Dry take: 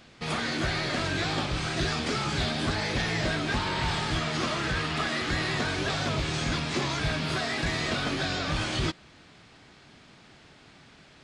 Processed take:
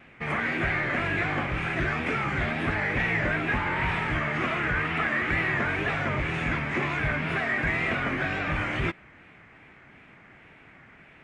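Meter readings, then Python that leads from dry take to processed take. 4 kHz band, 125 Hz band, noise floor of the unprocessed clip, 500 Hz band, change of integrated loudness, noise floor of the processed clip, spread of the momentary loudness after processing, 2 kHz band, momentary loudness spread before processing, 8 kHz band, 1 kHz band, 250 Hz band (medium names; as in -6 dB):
-9.5 dB, 0.0 dB, -54 dBFS, +0.5 dB, +2.0 dB, -53 dBFS, 3 LU, +5.5 dB, 1 LU, under -15 dB, +2.0 dB, 0.0 dB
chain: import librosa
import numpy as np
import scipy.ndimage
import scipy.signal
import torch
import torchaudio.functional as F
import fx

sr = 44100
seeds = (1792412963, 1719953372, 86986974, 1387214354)

y = fx.high_shelf_res(x, sr, hz=3100.0, db=-12.5, q=3.0)
y = fx.wow_flutter(y, sr, seeds[0], rate_hz=2.1, depth_cents=87.0)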